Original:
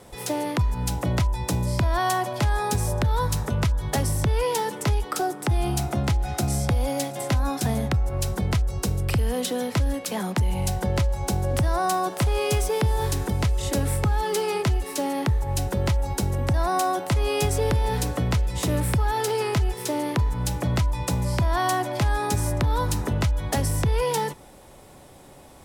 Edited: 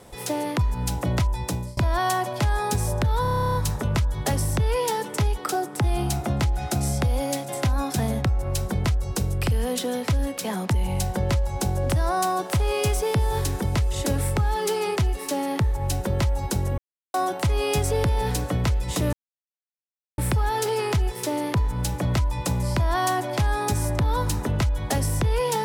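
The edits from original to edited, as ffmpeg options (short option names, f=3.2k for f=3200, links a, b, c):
-filter_complex "[0:a]asplit=16[a][b][c][d][e][f][g][h][i][j][k][l][m][n][o][p];[a]atrim=end=1.77,asetpts=PTS-STARTPTS,afade=t=out:st=1.3:d=0.47:c=qsin:silence=0.0668344[q];[b]atrim=start=1.77:end=3.252,asetpts=PTS-STARTPTS,afade=t=in:d=0.004:c=hsin:silence=0.0668344[r];[c]atrim=start=3.218:end=3.252[s];[d]atrim=start=3.218:end=3.252[t];[e]atrim=start=3.218:end=3.252[u];[f]atrim=start=3.218:end=3.252[v];[g]atrim=start=3.218:end=3.252[w];[h]atrim=start=3.218:end=3.252[x];[i]atrim=start=3.218:end=3.252[y];[j]atrim=start=3.218:end=3.252[z];[k]atrim=start=3.218:end=3.252[aa];[l]atrim=start=3.218:end=3.252[ab];[m]atrim=start=3.218:end=16.45,asetpts=PTS-STARTPTS,afade=t=out:st=13.228:d=0.004:c=hsin[ac];[n]atrim=start=16.45:end=16.81,asetpts=PTS-STARTPTS,volume=0[ad];[o]atrim=start=16.81:end=18.8,asetpts=PTS-STARTPTS,afade=t=in:d=0.004:c=hsin,afade=t=out:st=1.986:d=0.004:c=hsin,apad=pad_dur=1.05[ae];[p]atrim=start=18.8,asetpts=PTS-STARTPTS,afade=t=in:d=0.004:c=hsin[af];[q][r]concat=n=2:v=0:a=1[ag];[ag][s]acrossfade=d=0.004:c1=hsin:c2=hsin[ah];[ah][t]acrossfade=d=0.004:c1=hsin:c2=hsin[ai];[ai][u]acrossfade=d=0.004:c1=hsin:c2=hsin[aj];[aj][v]acrossfade=d=0.004:c1=hsin:c2=hsin[ak];[ak][w]acrossfade=d=0.004:c1=hsin:c2=hsin[al];[al][x]acrossfade=d=0.004:c1=hsin:c2=hsin[am];[am][y]acrossfade=d=0.004:c1=hsin:c2=hsin[an];[an][z]acrossfade=d=0.004:c1=hsin:c2=hsin[ao];[ao][aa]acrossfade=d=0.004:c1=hsin:c2=hsin[ap];[ap][ab]acrossfade=d=0.004:c1=hsin:c2=hsin[aq];[ac][ad][ae][af]concat=n=4:v=0:a=1[ar];[aq][ar]acrossfade=d=0.004:c1=hsin:c2=hsin"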